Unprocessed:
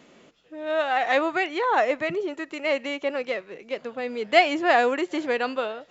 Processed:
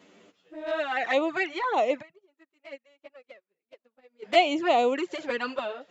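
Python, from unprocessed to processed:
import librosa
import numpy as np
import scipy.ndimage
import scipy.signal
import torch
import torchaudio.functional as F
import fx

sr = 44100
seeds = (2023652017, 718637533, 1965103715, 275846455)

y = scipy.signal.sosfilt(scipy.signal.butter(2, 110.0, 'highpass', fs=sr, output='sos'), x)
y = fx.env_flanger(y, sr, rest_ms=11.0, full_db=-18.0)
y = fx.upward_expand(y, sr, threshold_db=-42.0, expansion=2.5, at=(2.01, 4.22), fade=0.02)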